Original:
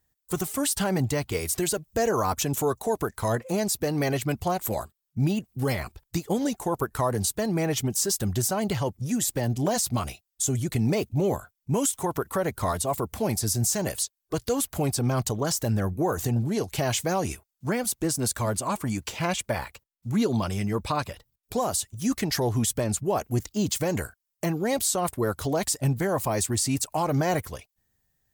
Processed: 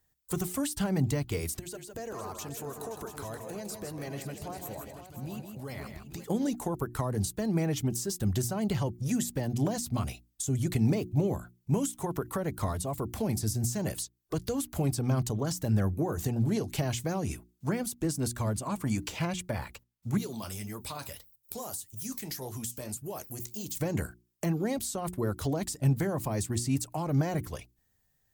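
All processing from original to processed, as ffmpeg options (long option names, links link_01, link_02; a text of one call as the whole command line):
ffmpeg -i in.wav -filter_complex "[0:a]asettb=1/sr,asplit=3[link_01][link_02][link_03];[link_01]atrim=end=1.594[link_04];[link_02]atrim=start=1.59:end=6.24,asetpts=PTS-STARTPTS,afade=type=in:duration=0.004:curve=qsin,afade=type=out:start_time=4.646:duration=0.004:curve=qsin,acompressor=threshold=-41dB:ratio=3:attack=3.2:release=140:knee=1:detection=peak,aecho=1:1:146|160|523|684|839:0.133|0.447|0.266|0.237|0.237,atrim=end_sample=205065[link_05];[link_03]atrim=start=6.236[link_06];[link_04][link_05]acrossfade=duration=0.004:curve1=hsin:curve2=qsin[link_07];[link_07][link_06]acrossfade=duration=0.004:curve1=qsin:curve2=hsin,asettb=1/sr,asplit=3[link_08][link_09][link_10];[link_08]atrim=end=20.174[link_11];[link_09]atrim=start=20.17:end=23.77,asetpts=PTS-STARTPTS,afade=type=in:duration=0.004:curve=qsin,afade=type=out:start_time=3.596:duration=0.004:curve=qsin,aemphasis=mode=production:type=75fm,acompressor=threshold=-33dB:ratio=2.5:attack=3.2:release=140:knee=1:detection=peak,flanger=delay=5.4:depth=9.8:regen=-61:speed=1.7:shape=sinusoidal[link_12];[link_10]atrim=start=23.766[link_13];[link_11][link_12]acrossfade=duration=0.004:curve1=hsin:curve2=qsin[link_14];[link_14][link_13]acrossfade=duration=0.004:curve1=qsin:curve2=hsin,bandreject=frequency=60:width_type=h:width=6,bandreject=frequency=120:width_type=h:width=6,bandreject=frequency=180:width_type=h:width=6,bandreject=frequency=240:width_type=h:width=6,bandreject=frequency=300:width_type=h:width=6,bandreject=frequency=360:width_type=h:width=6,acrossover=split=300[link_15][link_16];[link_16]acompressor=threshold=-35dB:ratio=4[link_17];[link_15][link_17]amix=inputs=2:normalize=0" out.wav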